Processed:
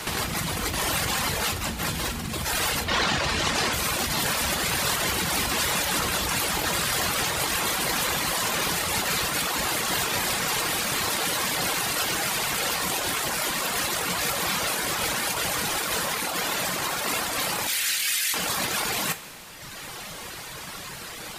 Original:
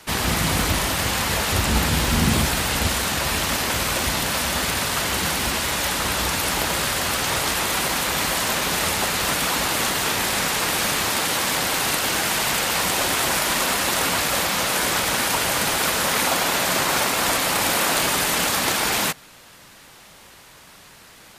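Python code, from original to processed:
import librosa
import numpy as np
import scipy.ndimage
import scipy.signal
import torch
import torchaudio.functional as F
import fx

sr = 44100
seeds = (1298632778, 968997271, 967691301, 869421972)

y = fx.lowpass(x, sr, hz=fx.line((2.83, 4500.0), (3.72, 7600.0)), slope=12, at=(2.83, 3.72), fade=0.02)
y = fx.dereverb_blind(y, sr, rt60_s=1.2)
y = fx.cheby2_highpass(y, sr, hz=890.0, order=4, stop_db=40, at=(17.67, 18.34))
y = fx.over_compress(y, sr, threshold_db=-32.0, ratio=-1.0)
y = fx.rev_double_slope(y, sr, seeds[0], early_s=0.22, late_s=3.9, knee_db=-19, drr_db=7.5)
y = F.gain(torch.from_numpy(y), 4.5).numpy()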